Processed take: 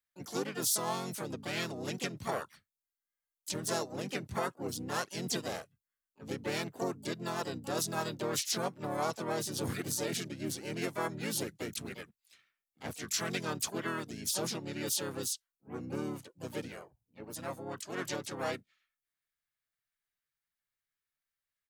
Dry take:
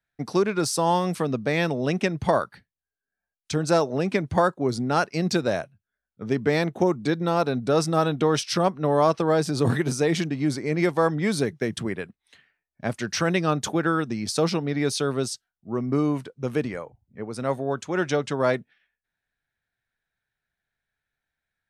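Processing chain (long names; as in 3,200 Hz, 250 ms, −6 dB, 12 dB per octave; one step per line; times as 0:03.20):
pitch-shifted copies added −5 semitones −4 dB, +4 semitones −3 dB, +12 semitones −14 dB
first-order pre-emphasis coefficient 0.8
level −3.5 dB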